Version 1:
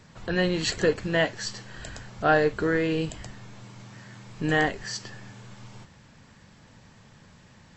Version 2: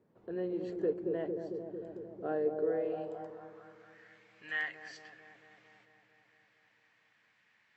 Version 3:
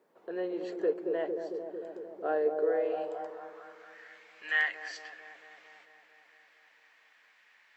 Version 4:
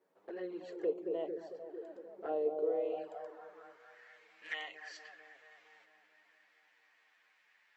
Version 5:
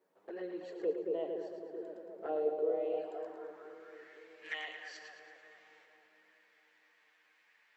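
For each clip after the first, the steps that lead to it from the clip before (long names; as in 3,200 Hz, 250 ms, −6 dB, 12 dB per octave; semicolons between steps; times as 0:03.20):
delay with a low-pass on its return 225 ms, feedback 72%, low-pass 670 Hz, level −4 dB; band-pass filter sweep 390 Hz → 2,100 Hz, 0:02.46–0:04.15; level −6.5 dB
high-pass filter 510 Hz 12 dB per octave; level +7.5 dB
flanger swept by the level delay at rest 11.2 ms, full sweep at −28 dBFS; level −4 dB
echo with a time of its own for lows and highs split 410 Hz, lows 514 ms, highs 111 ms, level −8 dB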